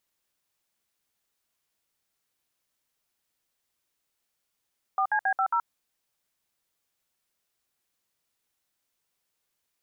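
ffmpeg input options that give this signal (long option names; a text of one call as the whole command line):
ffmpeg -f lavfi -i "aevalsrc='0.0596*clip(min(mod(t,0.136),0.076-mod(t,0.136))/0.002,0,1)*(eq(floor(t/0.136),0)*(sin(2*PI*770*mod(t,0.136))+sin(2*PI*1209*mod(t,0.136)))+eq(floor(t/0.136),1)*(sin(2*PI*852*mod(t,0.136))+sin(2*PI*1633*mod(t,0.136)))+eq(floor(t/0.136),2)*(sin(2*PI*770*mod(t,0.136))+sin(2*PI*1633*mod(t,0.136)))+eq(floor(t/0.136),3)*(sin(2*PI*770*mod(t,0.136))+sin(2*PI*1336*mod(t,0.136)))+eq(floor(t/0.136),4)*(sin(2*PI*941*mod(t,0.136))+sin(2*PI*1336*mod(t,0.136))))':duration=0.68:sample_rate=44100" out.wav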